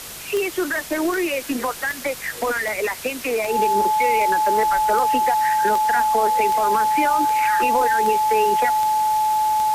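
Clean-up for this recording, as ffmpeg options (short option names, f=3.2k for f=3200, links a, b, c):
-af "adeclick=t=4,bandreject=f=49.9:t=h:w=4,bandreject=f=99.8:t=h:w=4,bandreject=f=149.7:t=h:w=4,bandreject=f=199.6:t=h:w=4,bandreject=f=860:w=30,afwtdn=0.02"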